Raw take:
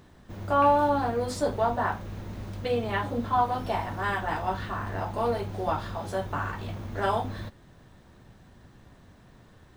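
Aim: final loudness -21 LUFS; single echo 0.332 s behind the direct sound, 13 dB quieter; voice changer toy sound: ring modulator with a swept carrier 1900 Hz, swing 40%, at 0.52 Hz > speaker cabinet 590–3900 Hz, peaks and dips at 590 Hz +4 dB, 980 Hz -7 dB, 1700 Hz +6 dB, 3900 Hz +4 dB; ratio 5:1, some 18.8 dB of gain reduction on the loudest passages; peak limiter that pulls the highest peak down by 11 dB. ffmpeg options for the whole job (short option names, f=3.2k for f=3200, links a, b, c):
-af "acompressor=threshold=-39dB:ratio=5,alimiter=level_in=13.5dB:limit=-24dB:level=0:latency=1,volume=-13.5dB,aecho=1:1:332:0.224,aeval=exprs='val(0)*sin(2*PI*1900*n/s+1900*0.4/0.52*sin(2*PI*0.52*n/s))':c=same,highpass=590,equalizer=f=590:t=q:w=4:g=4,equalizer=f=980:t=q:w=4:g=-7,equalizer=f=1.7k:t=q:w=4:g=6,equalizer=f=3.9k:t=q:w=4:g=4,lowpass=f=3.9k:w=0.5412,lowpass=f=3.9k:w=1.3066,volume=24.5dB"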